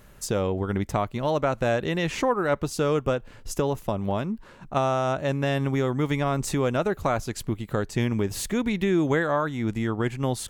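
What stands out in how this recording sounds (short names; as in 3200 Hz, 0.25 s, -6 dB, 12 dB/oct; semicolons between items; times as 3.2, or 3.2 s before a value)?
noise floor -48 dBFS; spectral tilt -6.0 dB/oct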